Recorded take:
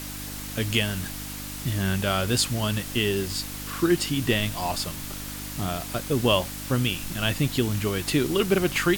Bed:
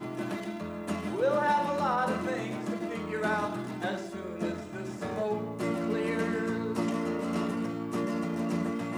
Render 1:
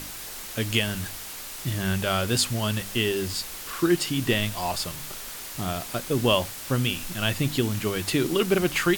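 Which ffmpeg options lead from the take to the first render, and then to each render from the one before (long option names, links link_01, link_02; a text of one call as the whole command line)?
ffmpeg -i in.wav -af "bandreject=frequency=50:width_type=h:width=4,bandreject=frequency=100:width_type=h:width=4,bandreject=frequency=150:width_type=h:width=4,bandreject=frequency=200:width_type=h:width=4,bandreject=frequency=250:width_type=h:width=4,bandreject=frequency=300:width_type=h:width=4" out.wav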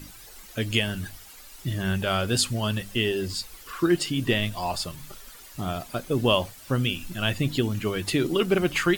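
ffmpeg -i in.wav -af "afftdn=noise_reduction=12:noise_floor=-38" out.wav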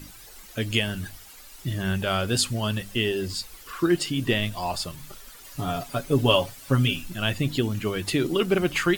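ffmpeg -i in.wav -filter_complex "[0:a]asettb=1/sr,asplit=3[link_01][link_02][link_03];[link_01]atrim=end=5.444[link_04];[link_02]atrim=start=5.44:end=7.01,asetpts=PTS-STARTPTS,afade=type=in:duration=0.004:curve=qsin,afade=type=out:start_time=1.566:duration=0.004:curve=qsin,aecho=1:1:7.2:0.77,atrim=end_sample=69237[link_05];[link_03]atrim=start=7.006[link_06];[link_04][link_05]acrossfade=duration=0.004:curve1=hsin:curve2=qsin[link_07];[link_07][link_06]acrossfade=duration=0.004:curve1=qsin:curve2=hsin" out.wav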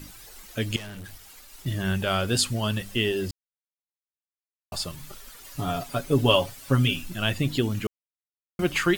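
ffmpeg -i in.wav -filter_complex "[0:a]asettb=1/sr,asplit=3[link_01][link_02][link_03];[link_01]atrim=end=0.764[link_04];[link_02]atrim=start=0.76:end=1.66,asetpts=PTS-STARTPTS,afade=type=in:duration=0.004:curve=qsin,afade=type=out:start_time=0.896:duration=0.004:curve=qsin,aeval=exprs='(tanh(70.8*val(0)+0.35)-tanh(0.35))/70.8':channel_layout=same[link_05];[link_03]atrim=start=1.656[link_06];[link_04][link_05]acrossfade=duration=0.004:curve1=hsin:curve2=qsin[link_07];[link_07][link_06]acrossfade=duration=0.004:curve1=qsin:curve2=hsin,asplit=5[link_08][link_09][link_10][link_11][link_12];[link_08]atrim=end=3.31,asetpts=PTS-STARTPTS,afade=type=out:start_time=3.306:duration=0.004:curve=hsin[link_13];[link_09]atrim=start=3.31:end=4.72,asetpts=PTS-STARTPTS,volume=0[link_14];[link_10]atrim=start=4.72:end=7.87,asetpts=PTS-STARTPTS,afade=type=in:duration=0.004:curve=hsin,afade=type=out:start_time=3.146:duration=0.004:curve=hsin[link_15];[link_11]atrim=start=7.87:end=8.59,asetpts=PTS-STARTPTS,volume=0[link_16];[link_12]atrim=start=8.59,asetpts=PTS-STARTPTS,afade=type=in:duration=0.004:curve=hsin[link_17];[link_13][link_14][link_15][link_16][link_17]concat=n=5:v=0:a=1" out.wav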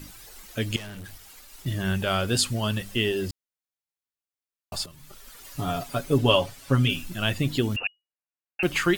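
ffmpeg -i in.wav -filter_complex "[0:a]asettb=1/sr,asplit=3[link_01][link_02][link_03];[link_01]atrim=end=6.184[link_04];[link_02]atrim=start=6.18:end=6.9,asetpts=PTS-STARTPTS,afade=type=in:duration=0.004:curve=qsin,afade=type=out:start_time=0.716:duration=0.004:curve=qsin,highshelf=frequency=11000:gain=-8.5[link_05];[link_03]atrim=start=6.896[link_06];[link_04][link_05]acrossfade=duration=0.004:curve1=hsin:curve2=qsin[link_07];[link_07][link_06]acrossfade=duration=0.004:curve1=qsin:curve2=hsin,asettb=1/sr,asplit=3[link_08][link_09][link_10];[link_08]atrim=end=7.764[link_11];[link_09]atrim=start=7.76:end=8.63,asetpts=PTS-STARTPTS,afade=type=in:duration=0.004:curve=qsin,afade=type=out:start_time=0.866:duration=0.004:curve=qsin,lowpass=frequency=2500:width_type=q:width=0.5098,lowpass=frequency=2500:width_type=q:width=0.6013,lowpass=frequency=2500:width_type=q:width=0.9,lowpass=frequency=2500:width_type=q:width=2.563,afreqshift=-2900[link_12];[link_10]atrim=start=8.626[link_13];[link_11][link_12]acrossfade=duration=0.004:curve1=hsin:curve2=qsin[link_14];[link_14][link_13]acrossfade=duration=0.004:curve1=qsin:curve2=hsin,asplit=2[link_15][link_16];[link_15]atrim=end=4.86,asetpts=PTS-STARTPTS,afade=type=out:start_time=4.856:duration=0.004:curve=hsin:silence=0.211349[link_17];[link_16]atrim=start=4.86,asetpts=PTS-STARTPTS,afade=type=in:duration=0.54:silence=0.211349[link_18];[link_17][link_18]concat=n=2:v=0:a=1" out.wav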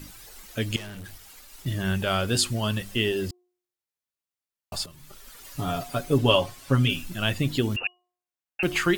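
ffmpeg -i in.wav -af "bandreject=frequency=358.3:width_type=h:width=4,bandreject=frequency=716.6:width_type=h:width=4,bandreject=frequency=1074.9:width_type=h:width=4" out.wav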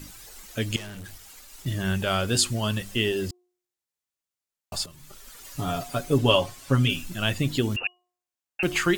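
ffmpeg -i in.wav -af "equalizer=frequency=7100:width_type=o:width=0.67:gain=3.5" out.wav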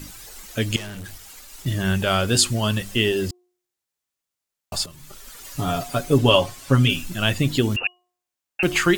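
ffmpeg -i in.wav -af "volume=4.5dB,alimiter=limit=-2dB:level=0:latency=1" out.wav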